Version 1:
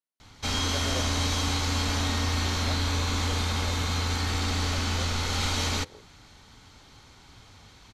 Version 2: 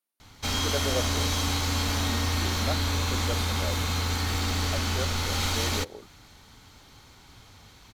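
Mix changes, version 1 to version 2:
speech +8.0 dB; master: remove LPF 9100 Hz 12 dB/oct

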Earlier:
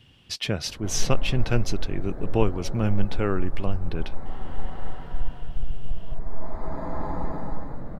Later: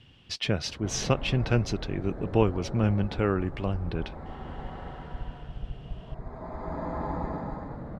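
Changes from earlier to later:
background: add HPF 43 Hz; master: add air absorption 66 m

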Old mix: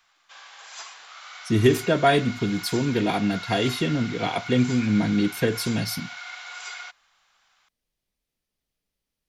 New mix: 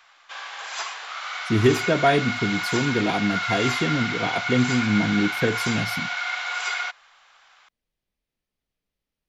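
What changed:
background +11.0 dB; master: add tone controls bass 0 dB, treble -7 dB

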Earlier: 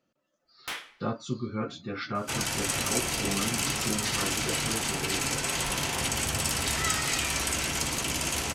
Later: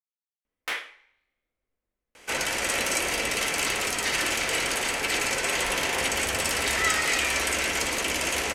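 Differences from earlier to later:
speech: muted; master: add graphic EQ 125/500/2000 Hz -11/+8/+8 dB

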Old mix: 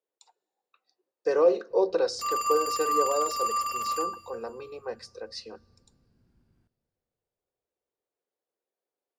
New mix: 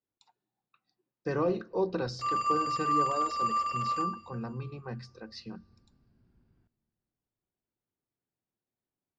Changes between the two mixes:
speech: remove resonant high-pass 480 Hz, resonance Q 3.4; master: add air absorption 150 m

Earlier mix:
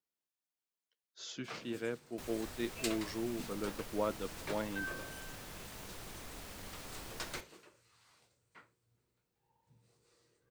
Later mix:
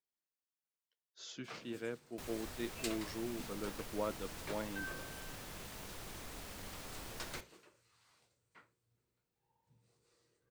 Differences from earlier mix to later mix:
speech -3.5 dB; first sound -3.5 dB

